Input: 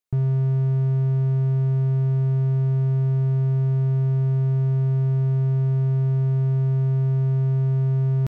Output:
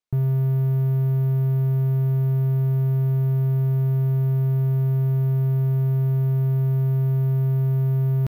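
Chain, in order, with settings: careless resampling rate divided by 3×, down filtered, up hold

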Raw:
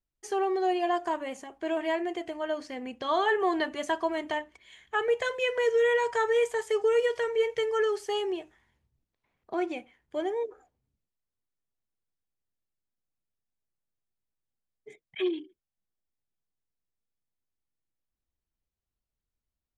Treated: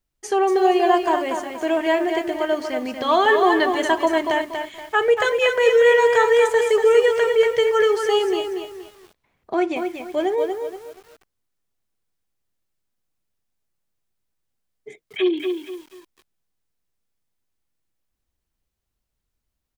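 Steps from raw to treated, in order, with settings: delay 245 ms -20.5 dB; bit-crushed delay 237 ms, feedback 35%, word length 9-bit, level -6 dB; trim +9 dB

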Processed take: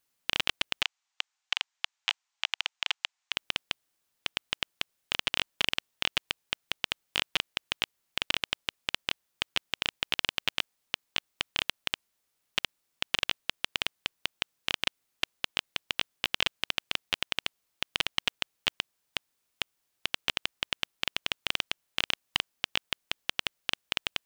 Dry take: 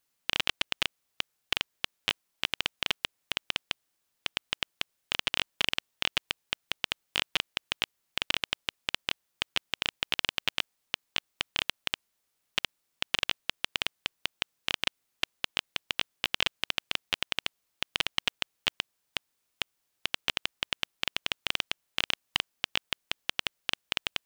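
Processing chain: 0.82–3.32 s: elliptic band-pass 790–7300 Hz, stop band 40 dB

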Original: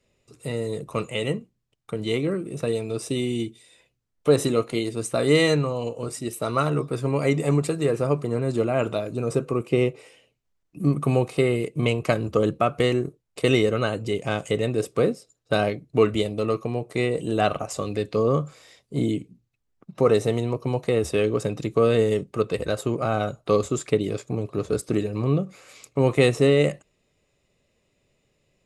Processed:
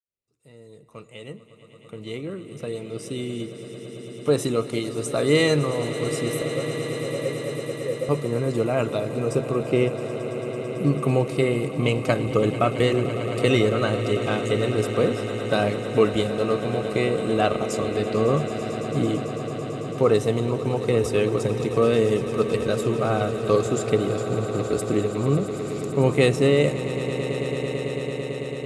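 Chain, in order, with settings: fade-in on the opening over 5.51 s; 6.42–8.09 s: cascade formant filter e; echo with a slow build-up 111 ms, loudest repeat 8, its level -15.5 dB

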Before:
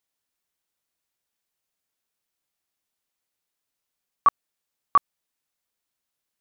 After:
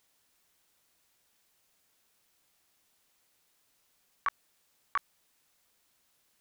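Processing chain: compressor with a negative ratio -23 dBFS, ratio -0.5; loudspeaker Doppler distortion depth 0.71 ms; trim -1 dB

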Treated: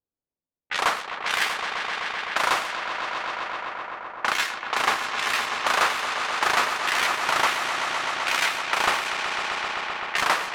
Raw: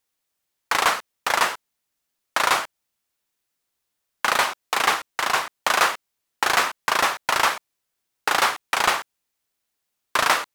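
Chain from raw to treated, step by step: pitch shift switched off and on +9.5 st, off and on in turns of 393 ms; on a send: echo with a slow build-up 128 ms, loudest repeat 5, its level -9.5 dB; on the sum: level-controlled noise filter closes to 500 Hz, open at -18 dBFS; treble shelf 7.4 kHz -9 dB; trim -2.5 dB

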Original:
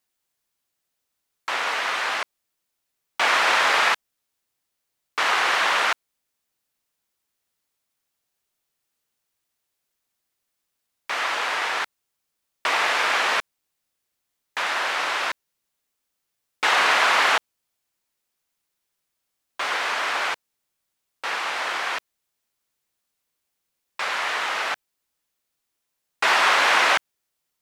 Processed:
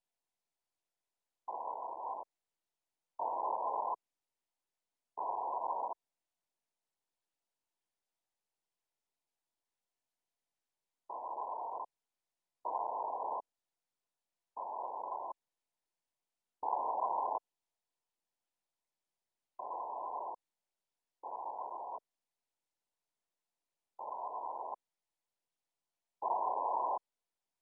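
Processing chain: Chebyshev shaper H 3 -21 dB, 4 -38 dB, 5 -25 dB, 6 -42 dB, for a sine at -5 dBFS; differentiator; trim +9 dB; MP2 8 kbps 22.05 kHz

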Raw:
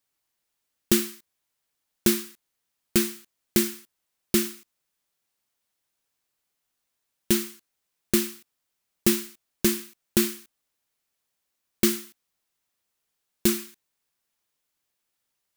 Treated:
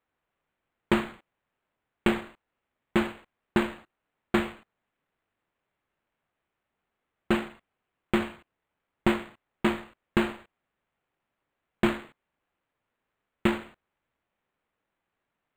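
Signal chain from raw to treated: decimation joined by straight lines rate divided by 8×; trim -2 dB

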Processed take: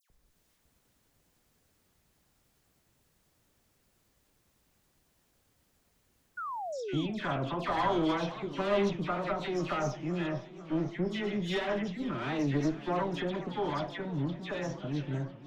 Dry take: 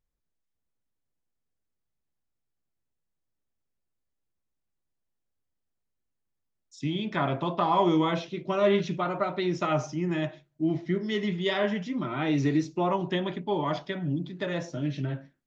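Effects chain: single-diode clipper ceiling -30 dBFS; upward compressor, threshold -50 dBFS; phase dispersion lows, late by 102 ms, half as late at 2.2 kHz; painted sound fall, 6.37–7.06 s, 260–1500 Hz -35 dBFS; modulated delay 504 ms, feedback 65%, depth 204 cents, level -16 dB; trim -2 dB

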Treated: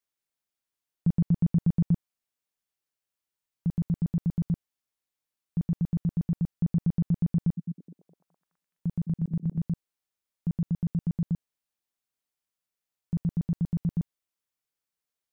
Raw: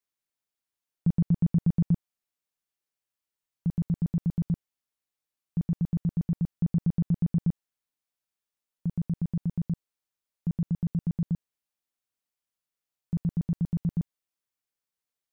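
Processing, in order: 7.36–9.59 s: repeats whose band climbs or falls 210 ms, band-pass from 210 Hz, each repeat 0.7 oct, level -7 dB

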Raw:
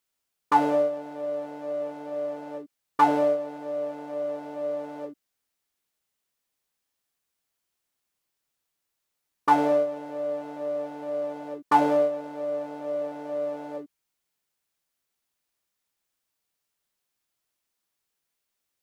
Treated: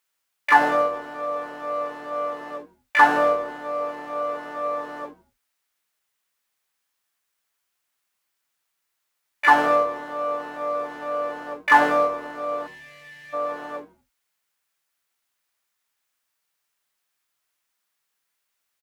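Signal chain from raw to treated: harmony voices -3 st -15 dB, +3 st -17 dB, +12 st -7 dB; treble shelf 4.6 kHz +8 dB; time-frequency box 12.67–13.33 s, 220–1700 Hz -26 dB; peaking EQ 1.5 kHz +10.5 dB 2.5 oct; on a send: frequency-shifting echo 81 ms, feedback 35%, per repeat -110 Hz, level -19 dB; on the sum: trim -4.5 dB

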